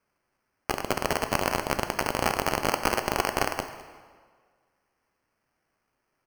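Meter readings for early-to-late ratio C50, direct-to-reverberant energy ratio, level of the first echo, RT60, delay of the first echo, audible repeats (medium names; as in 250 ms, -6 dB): 9.5 dB, 7.0 dB, -19.5 dB, 1.6 s, 208 ms, 1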